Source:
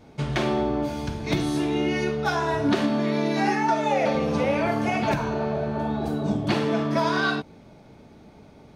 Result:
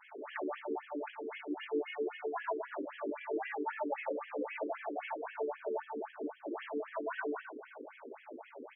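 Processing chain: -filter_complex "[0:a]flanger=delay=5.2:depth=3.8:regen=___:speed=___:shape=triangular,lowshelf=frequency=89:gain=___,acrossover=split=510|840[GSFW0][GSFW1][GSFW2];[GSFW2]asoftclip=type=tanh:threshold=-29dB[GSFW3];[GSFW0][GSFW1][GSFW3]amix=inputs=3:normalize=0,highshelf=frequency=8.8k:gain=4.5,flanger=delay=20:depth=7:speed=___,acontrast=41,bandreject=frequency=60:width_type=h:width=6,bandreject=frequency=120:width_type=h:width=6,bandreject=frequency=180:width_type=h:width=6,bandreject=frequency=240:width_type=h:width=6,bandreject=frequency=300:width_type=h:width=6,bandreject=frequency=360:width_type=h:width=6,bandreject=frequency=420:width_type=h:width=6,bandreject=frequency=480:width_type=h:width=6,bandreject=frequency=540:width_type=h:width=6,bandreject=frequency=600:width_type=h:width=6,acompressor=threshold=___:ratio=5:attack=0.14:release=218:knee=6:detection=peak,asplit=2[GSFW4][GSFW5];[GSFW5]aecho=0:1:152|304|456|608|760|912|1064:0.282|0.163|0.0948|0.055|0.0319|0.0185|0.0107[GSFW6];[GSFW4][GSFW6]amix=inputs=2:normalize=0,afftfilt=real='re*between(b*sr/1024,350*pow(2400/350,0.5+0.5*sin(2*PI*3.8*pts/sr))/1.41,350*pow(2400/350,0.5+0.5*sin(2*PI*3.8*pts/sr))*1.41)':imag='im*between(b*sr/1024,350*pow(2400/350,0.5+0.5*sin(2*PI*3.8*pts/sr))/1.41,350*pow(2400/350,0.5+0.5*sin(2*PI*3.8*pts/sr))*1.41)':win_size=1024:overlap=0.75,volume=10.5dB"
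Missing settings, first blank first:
-76, 0.43, 5.5, 1.1, -38dB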